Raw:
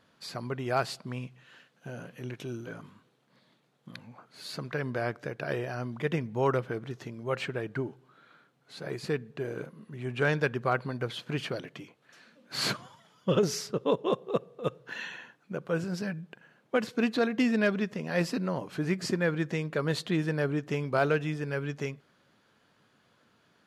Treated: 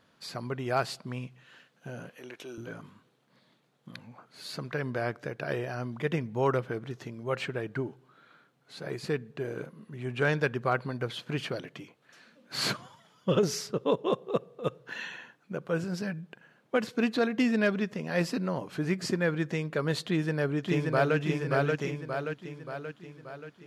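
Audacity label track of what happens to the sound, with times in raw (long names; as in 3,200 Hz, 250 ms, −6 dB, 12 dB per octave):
2.090000	2.580000	high-pass filter 390 Hz
20.050000	21.170000	delay throw 580 ms, feedback 55%, level −2.5 dB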